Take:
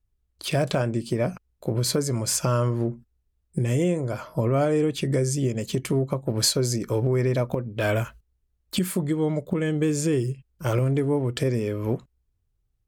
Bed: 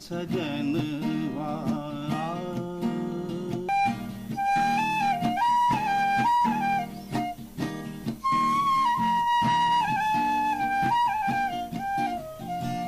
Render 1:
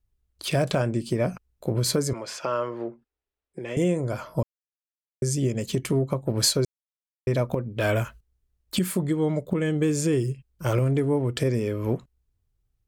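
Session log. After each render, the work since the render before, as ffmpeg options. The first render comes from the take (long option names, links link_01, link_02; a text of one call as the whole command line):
ffmpeg -i in.wav -filter_complex "[0:a]asettb=1/sr,asplit=3[link_01][link_02][link_03];[link_01]atrim=end=2.134[link_04];[link_02]atrim=start=2.13:end=3.77,asetpts=PTS-STARTPTS,afade=type=in:duration=0.004:curve=qsin,afade=type=out:start_time=1.636:duration=0.004:curve=qsin,acrossover=split=320 4300:gain=0.0794 1 0.0794[link_05][link_06][link_07];[link_05][link_06][link_07]amix=inputs=3:normalize=0[link_08];[link_03]atrim=start=3.766[link_09];[link_04][link_08]acrossfade=duration=0.004:curve1=hsin:curve2=qsin[link_10];[link_10][link_09]acrossfade=duration=0.004:curve1=qsin:curve2=hsin,asplit=5[link_11][link_12][link_13][link_14][link_15];[link_11]atrim=end=4.43,asetpts=PTS-STARTPTS,afade=type=out:start_time=4.426:duration=0.004:curve=hsin[link_16];[link_12]atrim=start=4.43:end=5.22,asetpts=PTS-STARTPTS,volume=0[link_17];[link_13]atrim=start=5.22:end=6.65,asetpts=PTS-STARTPTS,afade=type=in:duration=0.004:curve=hsin,afade=type=out:start_time=1.426:duration=0.004:curve=hsin[link_18];[link_14]atrim=start=6.65:end=7.27,asetpts=PTS-STARTPTS,volume=0[link_19];[link_15]atrim=start=7.27,asetpts=PTS-STARTPTS,afade=type=in:duration=0.004:curve=hsin[link_20];[link_16][link_17][link_18][link_19][link_20]concat=n=5:v=0:a=1" out.wav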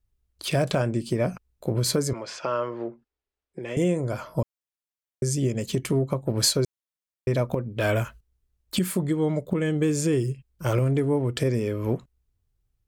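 ffmpeg -i in.wav -filter_complex "[0:a]asettb=1/sr,asplit=3[link_01][link_02][link_03];[link_01]atrim=end=2.114[link_04];[link_02]atrim=start=2.11:end=3.63,asetpts=PTS-STARTPTS,afade=type=in:duration=0.004:curve=qsin,afade=type=out:start_time=1.516:duration=0.004:curve=qsin,lowpass=6400[link_05];[link_03]atrim=start=3.626[link_06];[link_04][link_05]acrossfade=duration=0.004:curve1=hsin:curve2=qsin[link_07];[link_07][link_06]acrossfade=duration=0.004:curve1=qsin:curve2=hsin" out.wav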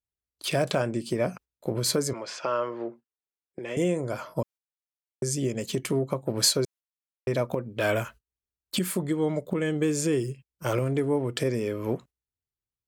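ffmpeg -i in.wav -af "highpass=frequency=230:poles=1,agate=range=-13dB:threshold=-45dB:ratio=16:detection=peak" out.wav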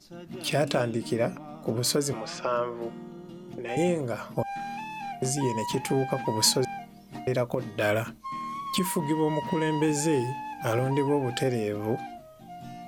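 ffmpeg -i in.wav -i bed.wav -filter_complex "[1:a]volume=-11.5dB[link_01];[0:a][link_01]amix=inputs=2:normalize=0" out.wav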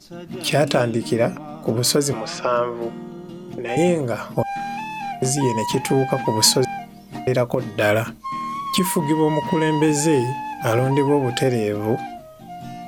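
ffmpeg -i in.wav -af "volume=7.5dB,alimiter=limit=-2dB:level=0:latency=1" out.wav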